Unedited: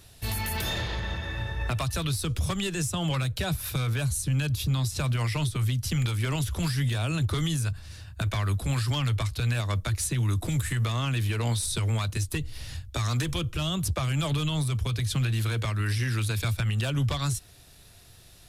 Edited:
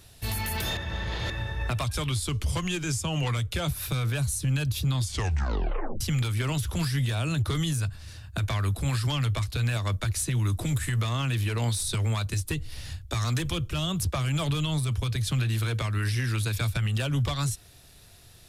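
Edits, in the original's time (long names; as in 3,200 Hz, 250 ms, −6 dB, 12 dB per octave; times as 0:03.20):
0:00.77–0:01.30: reverse
0:01.84–0:03.52: play speed 91%
0:04.79: tape stop 1.05 s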